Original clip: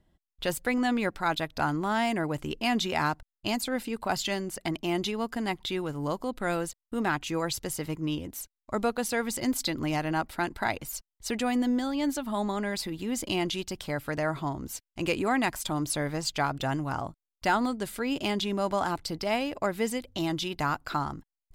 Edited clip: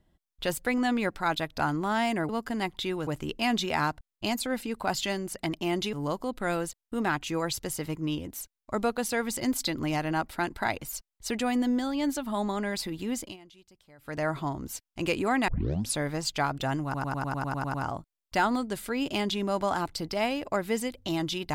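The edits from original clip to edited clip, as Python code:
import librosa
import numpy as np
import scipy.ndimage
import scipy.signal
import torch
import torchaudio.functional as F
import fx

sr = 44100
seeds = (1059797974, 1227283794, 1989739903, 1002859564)

y = fx.edit(x, sr, fx.move(start_s=5.15, length_s=0.78, to_s=2.29),
    fx.fade_down_up(start_s=13.12, length_s=1.11, db=-23.5, fade_s=0.25),
    fx.tape_start(start_s=15.48, length_s=0.47),
    fx.stutter(start_s=16.84, slice_s=0.1, count=10), tone=tone)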